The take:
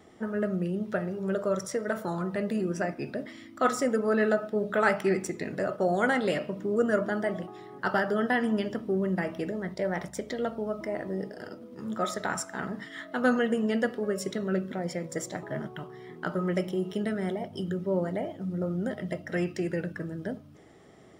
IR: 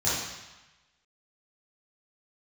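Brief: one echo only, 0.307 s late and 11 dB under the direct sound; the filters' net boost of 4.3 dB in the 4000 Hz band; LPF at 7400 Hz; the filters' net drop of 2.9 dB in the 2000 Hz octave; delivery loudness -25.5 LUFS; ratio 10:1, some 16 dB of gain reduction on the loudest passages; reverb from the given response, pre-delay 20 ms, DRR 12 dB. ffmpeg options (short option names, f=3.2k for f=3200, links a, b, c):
-filter_complex "[0:a]lowpass=7.4k,equalizer=f=2k:t=o:g=-5.5,equalizer=f=4k:t=o:g=8.5,acompressor=threshold=-37dB:ratio=10,aecho=1:1:307:0.282,asplit=2[a][b];[1:a]atrim=start_sample=2205,adelay=20[c];[b][c]afir=irnorm=-1:irlink=0,volume=-24dB[d];[a][d]amix=inputs=2:normalize=0,volume=15.5dB"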